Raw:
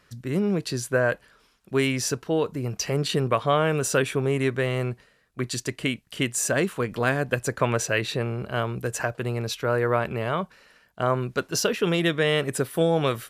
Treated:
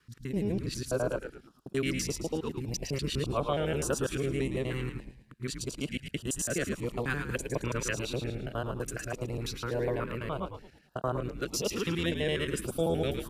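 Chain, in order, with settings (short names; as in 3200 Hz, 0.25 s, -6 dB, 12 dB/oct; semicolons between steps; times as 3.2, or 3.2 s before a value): local time reversal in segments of 83 ms; frequency-shifting echo 0.109 s, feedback 38%, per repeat -85 Hz, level -7 dB; stepped notch 3.4 Hz 630–2200 Hz; gain -7 dB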